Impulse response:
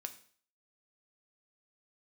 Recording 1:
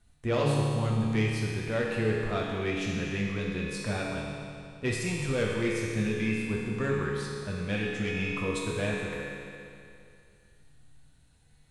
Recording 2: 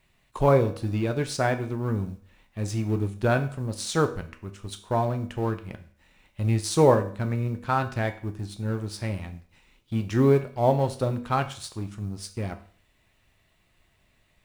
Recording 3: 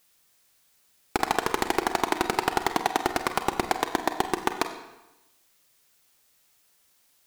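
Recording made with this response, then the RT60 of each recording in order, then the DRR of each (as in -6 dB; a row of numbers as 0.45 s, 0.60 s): 2; 2.5 s, 0.50 s, 1.0 s; -4.5 dB, 7.0 dB, 7.0 dB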